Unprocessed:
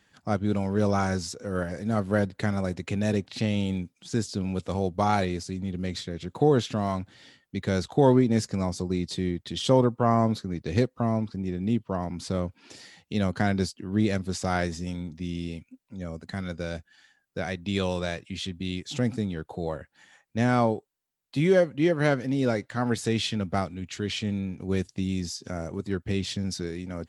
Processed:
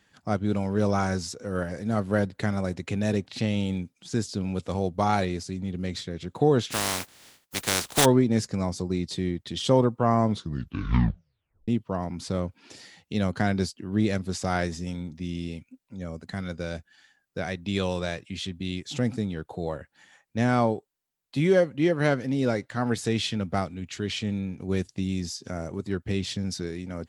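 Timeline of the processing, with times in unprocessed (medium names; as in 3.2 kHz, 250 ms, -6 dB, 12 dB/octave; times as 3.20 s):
6.70–8.04 s: spectral contrast reduction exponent 0.25
10.26 s: tape stop 1.42 s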